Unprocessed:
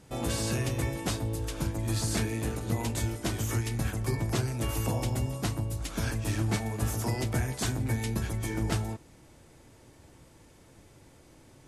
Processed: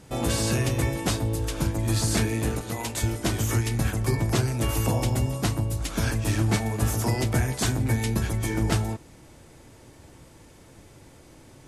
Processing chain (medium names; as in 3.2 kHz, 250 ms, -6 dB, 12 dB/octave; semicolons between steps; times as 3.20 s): 2.61–3.03 s: bass shelf 410 Hz -10.5 dB; trim +5.5 dB